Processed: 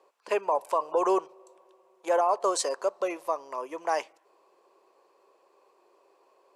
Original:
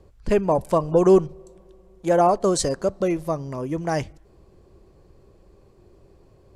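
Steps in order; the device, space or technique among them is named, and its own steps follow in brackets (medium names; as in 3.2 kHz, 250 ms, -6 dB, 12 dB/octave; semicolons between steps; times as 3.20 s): laptop speaker (high-pass 440 Hz 24 dB/octave; peaking EQ 1 kHz +10 dB 0.58 oct; peaking EQ 2.6 kHz +5.5 dB 0.29 oct; peak limiter -11 dBFS, peak gain reduction 8.5 dB); trim -4.5 dB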